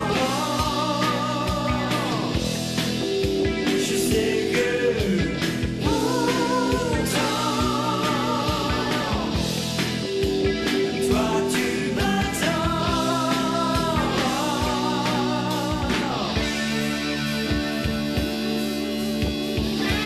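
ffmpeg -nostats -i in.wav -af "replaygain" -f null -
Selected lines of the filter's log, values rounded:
track_gain = +5.6 dB
track_peak = 0.249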